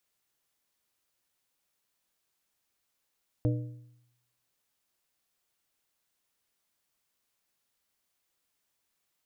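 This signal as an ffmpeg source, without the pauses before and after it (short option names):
-f lavfi -i "aevalsrc='0.075*pow(10,-3*t/0.83)*sin(2*PI*121*t)+0.0422*pow(10,-3*t/0.631)*sin(2*PI*302.5*t)+0.0237*pow(10,-3*t/0.548)*sin(2*PI*484*t)+0.0133*pow(10,-3*t/0.512)*sin(2*PI*605*t)':d=1.55:s=44100"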